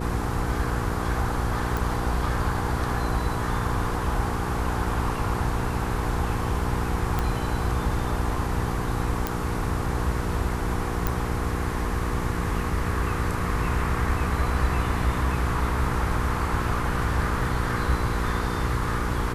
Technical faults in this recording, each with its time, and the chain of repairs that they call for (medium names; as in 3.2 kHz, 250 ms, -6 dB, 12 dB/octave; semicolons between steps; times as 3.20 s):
hum 60 Hz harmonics 8 -30 dBFS
1.77 s: pop
7.19 s: pop -12 dBFS
9.27 s: pop
11.07 s: pop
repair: de-click; de-hum 60 Hz, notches 8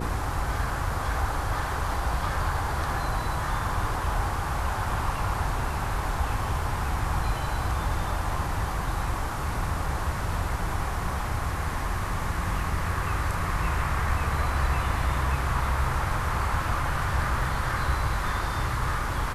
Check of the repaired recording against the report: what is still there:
nothing left